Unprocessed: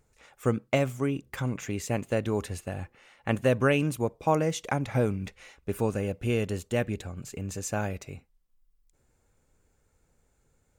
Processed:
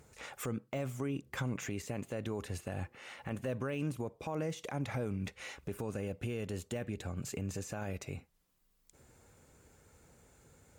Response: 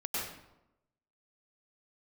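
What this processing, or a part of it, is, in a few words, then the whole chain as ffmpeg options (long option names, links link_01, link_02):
podcast mastering chain: -af "highpass=69,deesser=0.95,acompressor=threshold=-51dB:ratio=2,alimiter=level_in=13dB:limit=-24dB:level=0:latency=1:release=27,volume=-13dB,volume=9.5dB" -ar 44100 -c:a libmp3lame -b:a 96k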